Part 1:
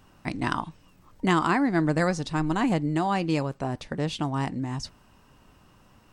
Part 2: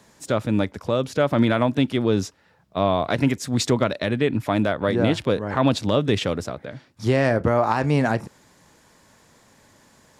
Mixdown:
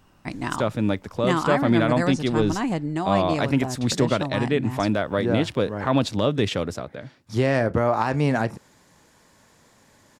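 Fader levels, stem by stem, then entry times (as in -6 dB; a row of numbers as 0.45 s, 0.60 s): -1.0 dB, -1.5 dB; 0.00 s, 0.30 s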